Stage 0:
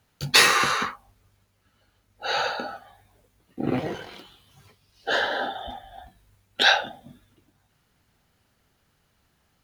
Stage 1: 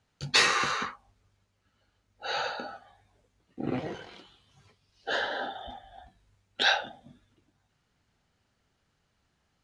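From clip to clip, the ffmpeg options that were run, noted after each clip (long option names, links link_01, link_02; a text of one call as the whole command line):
ffmpeg -i in.wav -af "lowpass=frequency=8300:width=0.5412,lowpass=frequency=8300:width=1.3066,volume=-6dB" out.wav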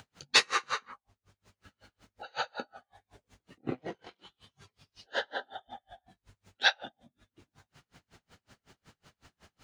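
ffmpeg -i in.wav -af "lowshelf=frequency=73:gain=-7.5,acompressor=mode=upward:threshold=-42dB:ratio=2.5,aeval=exprs='val(0)*pow(10,-37*(0.5-0.5*cos(2*PI*5.4*n/s))/20)':channel_layout=same,volume=2dB" out.wav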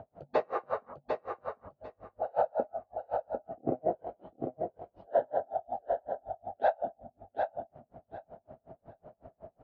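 ffmpeg -i in.wav -af "lowpass=frequency=650:width_type=q:width=7.9,alimiter=limit=-19.5dB:level=0:latency=1:release=464,aecho=1:1:749|1498|2247:0.562|0.107|0.0203,volume=3.5dB" out.wav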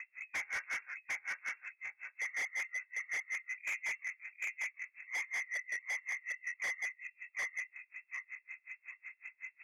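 ffmpeg -i in.wav -af "asoftclip=type=hard:threshold=-31dB,lowpass=frequency=2300:width_type=q:width=0.5098,lowpass=frequency=2300:width_type=q:width=0.6013,lowpass=frequency=2300:width_type=q:width=0.9,lowpass=frequency=2300:width_type=q:width=2.563,afreqshift=-2700,asoftclip=type=tanh:threshold=-36.5dB,volume=3dB" out.wav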